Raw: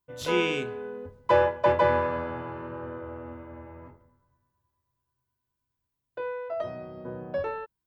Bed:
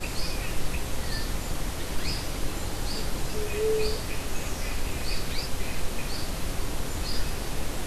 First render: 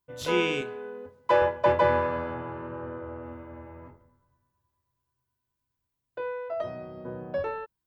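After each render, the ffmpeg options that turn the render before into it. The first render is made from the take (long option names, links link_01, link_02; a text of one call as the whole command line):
ffmpeg -i in.wav -filter_complex "[0:a]asettb=1/sr,asplit=3[link_01][link_02][link_03];[link_01]atrim=end=0.614[link_04];[link_02]atrim=start=0.61:end=1.42,asetpts=PTS-STARTPTS,afade=type=in:duration=0.004:curve=qsin,afade=type=out:start_time=0.806:duration=0.004:curve=qsin,highpass=frequency=300:poles=1[link_05];[link_03]atrim=start=1.416[link_06];[link_04][link_05]acrossfade=duration=0.004:curve1=hsin:curve2=qsin[link_07];[link_07][link_06]acrossfade=duration=0.004:curve1=qsin:curve2=hsin,asettb=1/sr,asplit=3[link_08][link_09][link_10];[link_08]atrim=end=2.344[link_11];[link_09]atrim=start=2.34:end=3.23,asetpts=PTS-STARTPTS,afade=type=in:duration=0.004:curve=qsin,afade=type=out:start_time=0.886:duration=0.004:curve=qsin,aemphasis=mode=reproduction:type=50fm[link_12];[link_10]atrim=start=3.226[link_13];[link_11][link_12]acrossfade=duration=0.004:curve1=hsin:curve2=qsin[link_14];[link_14][link_13]acrossfade=duration=0.004:curve1=qsin:curve2=hsin" out.wav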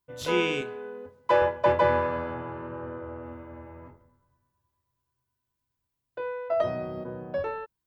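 ffmpeg -i in.wav -filter_complex "[0:a]asettb=1/sr,asplit=3[link_01][link_02][link_03];[link_01]atrim=end=6.504[link_04];[link_02]atrim=start=6.5:end=7.04,asetpts=PTS-STARTPTS,afade=type=in:duration=0.004:curve=qsin,afade=type=out:start_time=0.536:duration=0.004:curve=qsin,acontrast=67[link_05];[link_03]atrim=start=7.036[link_06];[link_04][link_05]acrossfade=duration=0.004:curve1=hsin:curve2=qsin[link_07];[link_07][link_06]acrossfade=duration=0.004:curve1=qsin:curve2=hsin" out.wav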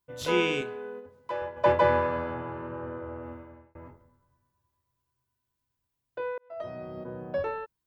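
ffmpeg -i in.wav -filter_complex "[0:a]asplit=3[link_01][link_02][link_03];[link_01]afade=type=out:start_time=0.99:duration=0.02[link_04];[link_02]acompressor=threshold=-51dB:ratio=1.5:attack=3.2:release=140:knee=1:detection=peak,afade=type=in:start_time=0.99:duration=0.02,afade=type=out:start_time=1.56:duration=0.02[link_05];[link_03]afade=type=in:start_time=1.56:duration=0.02[link_06];[link_04][link_05][link_06]amix=inputs=3:normalize=0,asplit=3[link_07][link_08][link_09];[link_07]atrim=end=3.75,asetpts=PTS-STARTPTS,afade=type=out:start_time=3.3:duration=0.45[link_10];[link_08]atrim=start=3.75:end=6.38,asetpts=PTS-STARTPTS,afade=type=in:duration=0.004:curve=hsin,afade=type=out:start_time=2.626:duration=0.004:curve=hsin[link_11];[link_09]atrim=start=6.38,asetpts=PTS-STARTPTS,afade=type=in:duration=0.9[link_12];[link_10][link_11][link_12]concat=n=3:v=0:a=1" out.wav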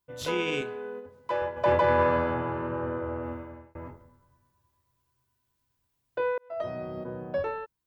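ffmpeg -i in.wav -af "alimiter=limit=-19.5dB:level=0:latency=1:release=21,dynaudnorm=framelen=220:gausssize=11:maxgain=5.5dB" out.wav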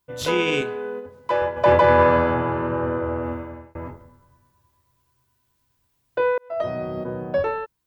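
ffmpeg -i in.wav -af "volume=7.5dB" out.wav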